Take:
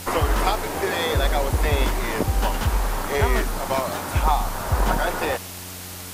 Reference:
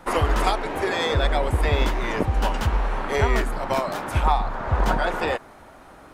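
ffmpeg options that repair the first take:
ffmpeg -i in.wav -af "bandreject=frequency=90.8:width_type=h:width=4,bandreject=frequency=181.6:width_type=h:width=4,bandreject=frequency=272.4:width_type=h:width=4,bandreject=frequency=363.2:width_type=h:width=4,bandreject=frequency=454:width_type=h:width=4,afwtdn=0.016" out.wav

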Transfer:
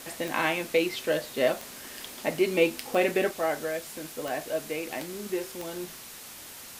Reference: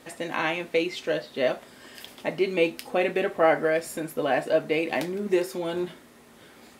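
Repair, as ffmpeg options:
ffmpeg -i in.wav -af "adeclick=threshold=4,afwtdn=0.0071,asetnsamples=nb_out_samples=441:pad=0,asendcmd='3.31 volume volume 8dB',volume=0dB" out.wav

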